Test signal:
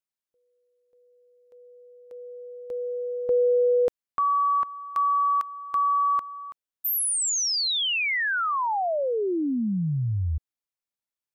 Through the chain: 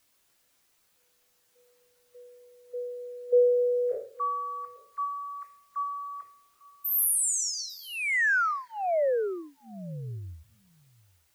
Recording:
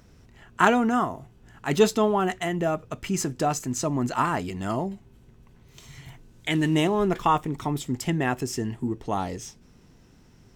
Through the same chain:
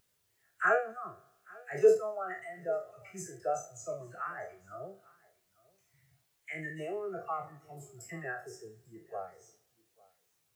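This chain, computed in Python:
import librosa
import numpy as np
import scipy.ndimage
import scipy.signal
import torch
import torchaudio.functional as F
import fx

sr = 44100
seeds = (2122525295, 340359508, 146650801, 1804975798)

y = fx.spec_trails(x, sr, decay_s=1.37)
y = scipy.signal.sosfilt(scipy.signal.butter(4, 84.0, 'highpass', fs=sr, output='sos'), y)
y = fx.fixed_phaser(y, sr, hz=950.0, stages=6)
y = fx.dispersion(y, sr, late='lows', ms=44.0, hz=980.0)
y = fx.dereverb_blind(y, sr, rt60_s=1.7)
y = fx.low_shelf(y, sr, hz=260.0, db=-4.0)
y = y + 10.0 ** (-16.5 / 20.0) * np.pad(y, (int(847 * sr / 1000.0), 0))[:len(y)]
y = fx.quant_dither(y, sr, seeds[0], bits=8, dither='triangular')
y = fx.spectral_expand(y, sr, expansion=1.5)
y = y * 10.0 ** (-4.0 / 20.0)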